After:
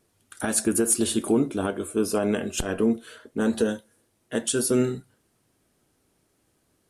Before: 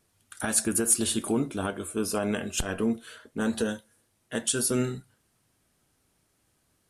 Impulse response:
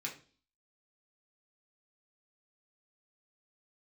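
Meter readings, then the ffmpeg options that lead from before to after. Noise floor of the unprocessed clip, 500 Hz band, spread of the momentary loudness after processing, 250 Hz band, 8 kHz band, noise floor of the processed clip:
-71 dBFS, +6.0 dB, 10 LU, +4.5 dB, 0.0 dB, -70 dBFS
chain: -af "equalizer=f=370:t=o:w=1.7:g=6.5"

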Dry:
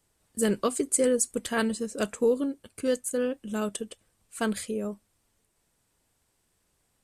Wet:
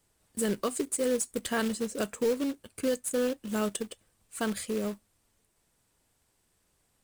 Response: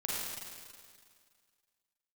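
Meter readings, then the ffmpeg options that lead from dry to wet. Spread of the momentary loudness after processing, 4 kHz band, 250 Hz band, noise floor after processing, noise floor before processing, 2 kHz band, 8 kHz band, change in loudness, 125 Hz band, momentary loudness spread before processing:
9 LU, -0.5 dB, -2.0 dB, -73 dBFS, -74 dBFS, -2.0 dB, -4.0 dB, -3.0 dB, -2.0 dB, 13 LU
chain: -af "alimiter=limit=-19.5dB:level=0:latency=1:release=269,acrusher=bits=3:mode=log:mix=0:aa=0.000001"

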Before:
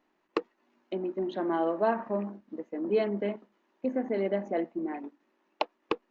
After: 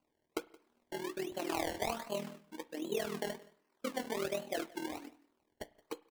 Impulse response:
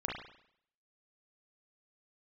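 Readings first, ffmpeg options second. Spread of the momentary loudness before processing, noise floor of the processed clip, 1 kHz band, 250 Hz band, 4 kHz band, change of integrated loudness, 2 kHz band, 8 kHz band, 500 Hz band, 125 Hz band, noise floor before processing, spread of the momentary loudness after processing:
11 LU, -81 dBFS, -7.5 dB, -10.0 dB, +2.0 dB, -8.0 dB, -2.5 dB, n/a, -9.0 dB, -8.0 dB, -75 dBFS, 12 LU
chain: -filter_complex "[0:a]lowpass=f=1.4k:p=1,lowshelf=f=490:g=-9.5,acompressor=threshold=-31dB:ratio=3,acrusher=samples=24:mix=1:aa=0.000001:lfo=1:lforange=24:lforate=1.3,tremolo=f=40:d=0.824,asplit=2[a][b];[b]adelay=13,volume=-10.5dB[c];[a][c]amix=inputs=2:normalize=0,aecho=1:1:172:0.0708,asplit=2[d][e];[1:a]atrim=start_sample=2205[f];[e][f]afir=irnorm=-1:irlink=0,volume=-20dB[g];[d][g]amix=inputs=2:normalize=0,volume=1.5dB"

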